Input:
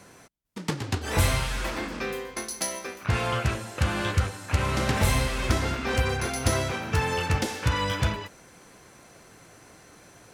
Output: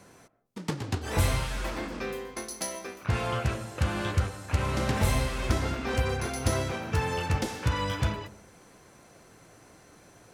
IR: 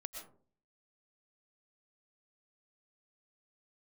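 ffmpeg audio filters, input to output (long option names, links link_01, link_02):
-filter_complex "[0:a]asplit=2[link_01][link_02];[link_02]lowpass=1400[link_03];[1:a]atrim=start_sample=2205[link_04];[link_03][link_04]afir=irnorm=-1:irlink=0,volume=-5dB[link_05];[link_01][link_05]amix=inputs=2:normalize=0,volume=-4.5dB"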